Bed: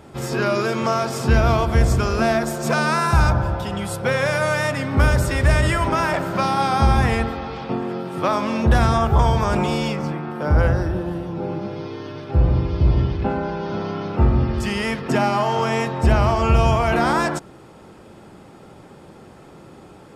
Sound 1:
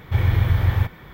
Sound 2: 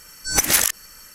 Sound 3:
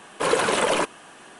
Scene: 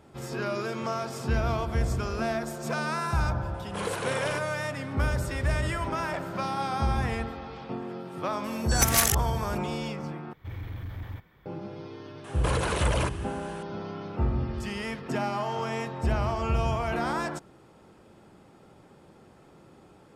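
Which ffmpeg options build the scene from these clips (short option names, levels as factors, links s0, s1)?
-filter_complex "[3:a]asplit=2[s0][s1];[0:a]volume=0.299[s2];[s0]asplit=2[s3][s4];[s4]adelay=45,volume=0.282[s5];[s3][s5]amix=inputs=2:normalize=0[s6];[1:a]volume=5.96,asoftclip=hard,volume=0.168[s7];[s1]acompressor=threshold=0.0562:ratio=6:attack=3.2:release=140:knee=1:detection=peak[s8];[s2]asplit=2[s9][s10];[s9]atrim=end=10.334[s11];[s7]atrim=end=1.13,asetpts=PTS-STARTPTS,volume=0.141[s12];[s10]atrim=start=11.456[s13];[s6]atrim=end=1.39,asetpts=PTS-STARTPTS,volume=0.251,afade=t=in:d=0.004:c=hsin,afade=t=out:st=1.386:d=0.004:c=hsin,adelay=3540[s14];[2:a]atrim=end=1.14,asetpts=PTS-STARTPTS,volume=0.501,afade=t=in:d=0.004:c=hsin,afade=t=out:st=1.136:d=0.004:c=hsin,adelay=8440[s15];[s8]atrim=end=1.39,asetpts=PTS-STARTPTS,volume=0.944,afade=t=in:d=0.004:c=hsin,afade=t=out:st=1.386:d=0.004:c=hsin,adelay=12240[s16];[s11][s12]acrossfade=d=0.004:c1=hsin:c2=hsin[s17];[s17][s13]acrossfade=d=0.004:c1=hsin:c2=hsin[s18];[s18][s14][s15][s16]amix=inputs=4:normalize=0"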